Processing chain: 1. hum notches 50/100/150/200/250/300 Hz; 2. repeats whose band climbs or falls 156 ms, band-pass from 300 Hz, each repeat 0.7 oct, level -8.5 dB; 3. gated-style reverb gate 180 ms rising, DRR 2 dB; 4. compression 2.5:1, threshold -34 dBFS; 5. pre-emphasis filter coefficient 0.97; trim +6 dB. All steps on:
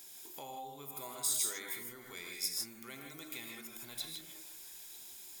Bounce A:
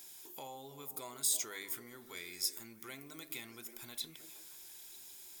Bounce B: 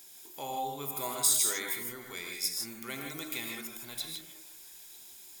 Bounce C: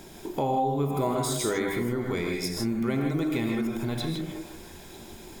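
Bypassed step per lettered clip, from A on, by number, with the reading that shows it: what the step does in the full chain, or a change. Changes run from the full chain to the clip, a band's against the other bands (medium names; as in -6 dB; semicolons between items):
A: 3, momentary loudness spread change +1 LU; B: 4, mean gain reduction 5.0 dB; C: 5, 8 kHz band -21.0 dB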